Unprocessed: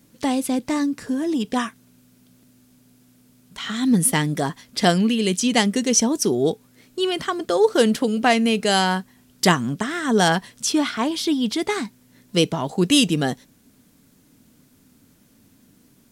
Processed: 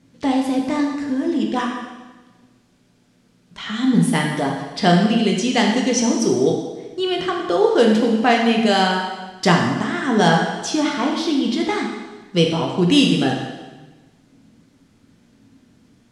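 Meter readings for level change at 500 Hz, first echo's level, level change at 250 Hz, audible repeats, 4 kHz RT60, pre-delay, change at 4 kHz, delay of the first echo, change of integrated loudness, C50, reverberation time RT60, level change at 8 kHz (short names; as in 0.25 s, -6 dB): +2.5 dB, none, +3.0 dB, none, 1.2 s, 5 ms, +1.0 dB, none, +2.0 dB, 3.0 dB, 1.2 s, -5.0 dB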